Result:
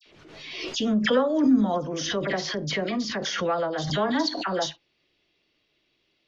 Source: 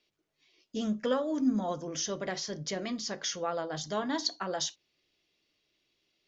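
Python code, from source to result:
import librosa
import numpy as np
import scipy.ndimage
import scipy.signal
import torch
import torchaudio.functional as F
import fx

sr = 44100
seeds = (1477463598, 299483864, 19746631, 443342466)

y = scipy.signal.sosfilt(scipy.signal.butter(2, 3900.0, 'lowpass', fs=sr, output='sos'), x)
y = fx.dispersion(y, sr, late='lows', ms=61.0, hz=1900.0)
y = fx.pre_swell(y, sr, db_per_s=43.0)
y = y * 10.0 ** (7.0 / 20.0)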